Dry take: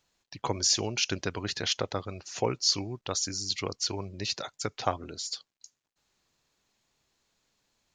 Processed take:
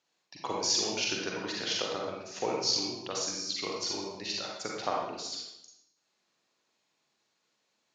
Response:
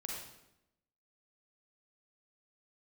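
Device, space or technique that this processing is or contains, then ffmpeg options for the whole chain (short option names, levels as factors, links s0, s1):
supermarket ceiling speaker: -filter_complex "[0:a]highpass=230,lowpass=6800[s0];[1:a]atrim=start_sample=2205[s1];[s0][s1]afir=irnorm=-1:irlink=0"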